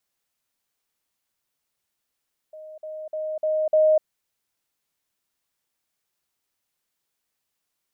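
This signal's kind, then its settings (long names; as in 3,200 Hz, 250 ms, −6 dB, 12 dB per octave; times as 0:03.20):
level staircase 622 Hz −38 dBFS, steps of 6 dB, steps 5, 0.25 s 0.05 s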